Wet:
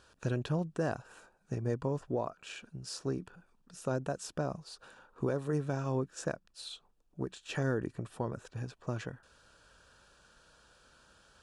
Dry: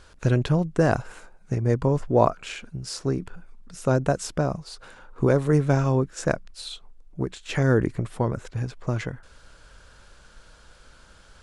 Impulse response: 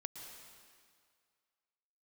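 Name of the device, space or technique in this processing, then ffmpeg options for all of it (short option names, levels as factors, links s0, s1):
PA system with an anti-feedback notch: -af "highpass=f=130:p=1,asuperstop=centerf=2100:order=4:qfactor=6.5,alimiter=limit=0.188:level=0:latency=1:release=313,volume=0.398"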